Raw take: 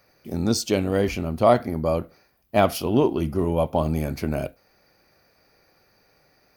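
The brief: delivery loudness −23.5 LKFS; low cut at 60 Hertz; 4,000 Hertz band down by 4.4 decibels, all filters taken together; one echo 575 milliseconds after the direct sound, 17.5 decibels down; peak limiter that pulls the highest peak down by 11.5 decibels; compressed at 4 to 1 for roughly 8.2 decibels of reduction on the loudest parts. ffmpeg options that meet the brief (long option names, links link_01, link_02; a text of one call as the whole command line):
ffmpeg -i in.wav -af "highpass=60,equalizer=frequency=4000:width_type=o:gain=-6,acompressor=threshold=-21dB:ratio=4,alimiter=limit=-21.5dB:level=0:latency=1,aecho=1:1:575:0.133,volume=9.5dB" out.wav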